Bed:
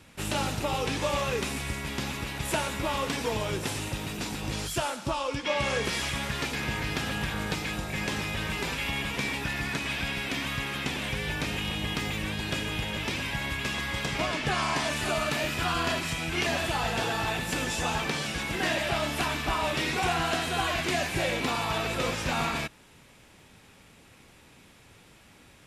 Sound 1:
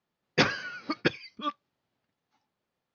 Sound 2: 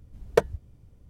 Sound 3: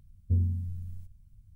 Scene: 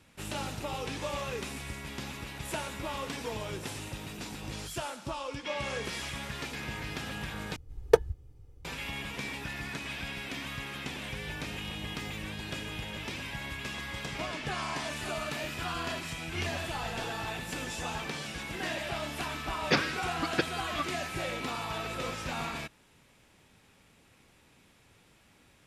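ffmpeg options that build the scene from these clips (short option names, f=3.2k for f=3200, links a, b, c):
-filter_complex "[0:a]volume=-7dB[a];[2:a]aecho=1:1:2.4:0.68[b];[1:a]aeval=exprs='val(0)+0.01*sin(2*PI*1300*n/s)':c=same[c];[a]asplit=2[d][e];[d]atrim=end=7.564[f];[b]atrim=end=1.09,asetpts=PTS-STARTPTS,volume=-3dB[g];[e]atrim=start=8.646[h];[3:a]atrim=end=1.55,asetpts=PTS-STARTPTS,volume=-14dB,afade=t=in:d=0.004:c=hsin,afade=t=out:st=1.546:d=0.004:c=hsin,adelay=707364S[i];[c]atrim=end=2.94,asetpts=PTS-STARTPTS,volume=-3dB,afade=t=in:d=0.004:c=hsin,afade=t=out:st=2.936:d=0.004:c=hsin,adelay=19330[j];[f][g]acrossfade=d=0.004:c1=hsin:c2=hsin[k];[k][h]acrossfade=d=0.004:c1=hsin:c2=hsin[l];[l][i][j]amix=inputs=3:normalize=0"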